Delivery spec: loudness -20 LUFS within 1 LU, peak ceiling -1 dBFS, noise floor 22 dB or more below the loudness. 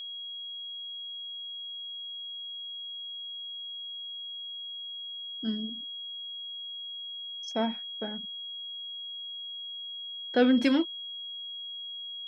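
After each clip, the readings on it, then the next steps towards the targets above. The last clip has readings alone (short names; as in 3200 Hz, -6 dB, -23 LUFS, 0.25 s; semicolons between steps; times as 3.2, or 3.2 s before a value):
steady tone 3300 Hz; tone level -37 dBFS; loudness -33.5 LUFS; peak -11.0 dBFS; loudness target -20.0 LUFS
-> notch 3300 Hz, Q 30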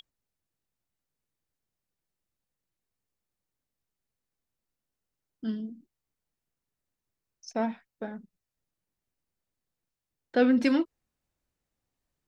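steady tone none; loudness -28.5 LUFS; peak -11.0 dBFS; loudness target -20.0 LUFS
-> gain +8.5 dB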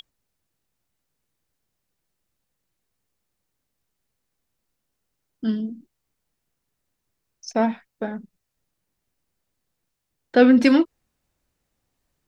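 loudness -20.0 LUFS; peak -2.5 dBFS; noise floor -79 dBFS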